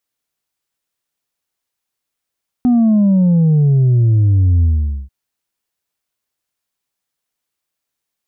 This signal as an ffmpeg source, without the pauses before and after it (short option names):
-f lavfi -i "aevalsrc='0.355*clip((2.44-t)/0.46,0,1)*tanh(1.33*sin(2*PI*250*2.44/log(65/250)*(exp(log(65/250)*t/2.44)-1)))/tanh(1.33)':d=2.44:s=44100"